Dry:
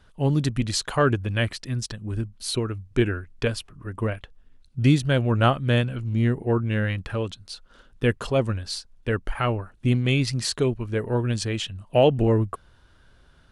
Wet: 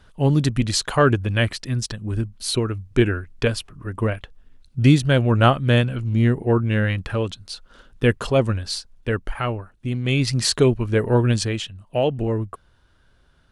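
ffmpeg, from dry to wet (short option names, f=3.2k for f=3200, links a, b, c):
-af "volume=15.5dB,afade=t=out:st=8.71:d=1.2:silence=0.354813,afade=t=in:st=9.91:d=0.58:silence=0.266073,afade=t=out:st=11.29:d=0.42:silence=0.334965"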